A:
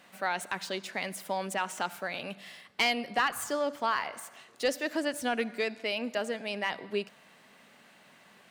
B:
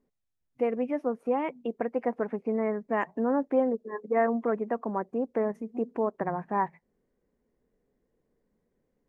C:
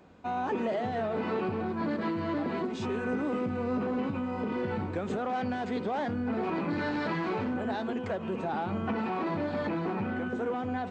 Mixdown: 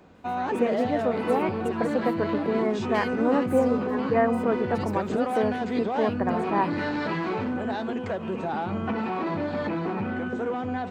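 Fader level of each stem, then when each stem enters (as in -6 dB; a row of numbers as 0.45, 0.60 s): -12.0, +2.5, +3.0 dB; 0.15, 0.00, 0.00 s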